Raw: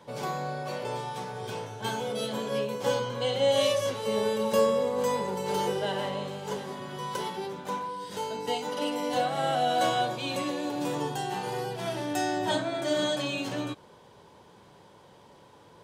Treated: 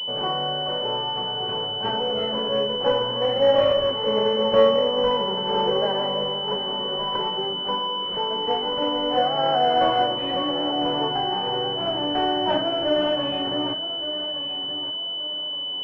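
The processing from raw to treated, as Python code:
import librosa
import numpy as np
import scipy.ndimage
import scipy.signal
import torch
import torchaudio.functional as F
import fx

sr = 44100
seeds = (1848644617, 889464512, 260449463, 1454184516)

p1 = fx.highpass(x, sr, hz=300.0, slope=6)
p2 = p1 + fx.echo_feedback(p1, sr, ms=1169, feedback_pct=33, wet_db=-12.0, dry=0)
p3 = fx.pwm(p2, sr, carrier_hz=3000.0)
y = p3 * 10.0 ** (7.5 / 20.0)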